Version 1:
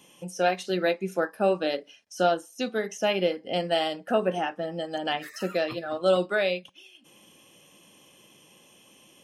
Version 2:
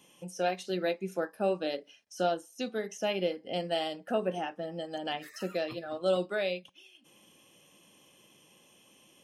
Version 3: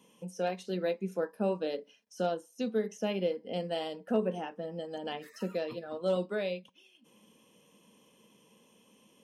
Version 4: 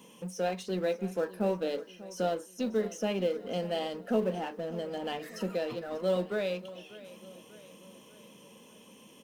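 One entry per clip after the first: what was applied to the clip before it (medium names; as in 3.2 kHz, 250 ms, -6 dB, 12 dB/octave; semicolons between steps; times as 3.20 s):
dynamic bell 1.4 kHz, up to -4 dB, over -39 dBFS, Q 1; trim -5 dB
hard clipper -18 dBFS, distortion -38 dB; small resonant body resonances 220/450/960 Hz, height 12 dB, ringing for 45 ms; trim -5.5 dB
companding laws mixed up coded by mu; feedback delay 592 ms, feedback 52%, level -17.5 dB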